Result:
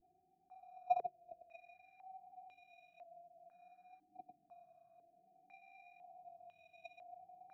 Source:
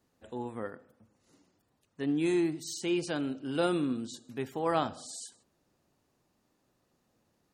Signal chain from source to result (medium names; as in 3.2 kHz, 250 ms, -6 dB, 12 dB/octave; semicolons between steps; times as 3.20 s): whistle 720 Hz -45 dBFS; upward compressor, threshold -40 dBFS; Paulstretch 24×, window 0.05 s, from 1.46 s; bass shelf 230 Hz +8 dB; Paulstretch 11×, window 0.10 s, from 1.38 s; vibrato 0.56 Hz 64 cents; sample-and-hold 14×; gate -35 dBFS, range -45 dB; harmonic-percussive split harmonic +9 dB; step-sequenced low-pass 2 Hz 330–2900 Hz; trim +17 dB